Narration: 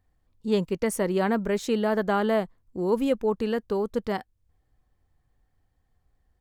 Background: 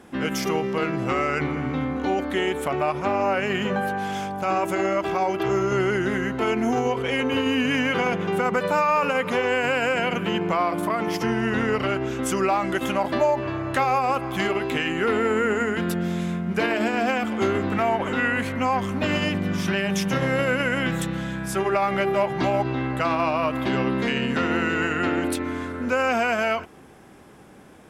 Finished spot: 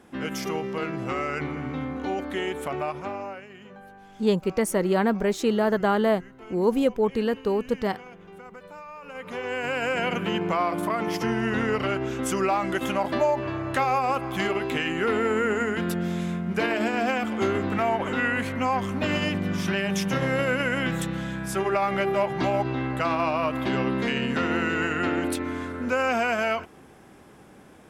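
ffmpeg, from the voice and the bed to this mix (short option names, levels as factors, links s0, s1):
-filter_complex "[0:a]adelay=3750,volume=1.26[s0];[1:a]volume=5.31,afade=t=out:st=2.78:d=0.69:silence=0.149624,afade=t=in:st=9.03:d=1.05:silence=0.105925[s1];[s0][s1]amix=inputs=2:normalize=0"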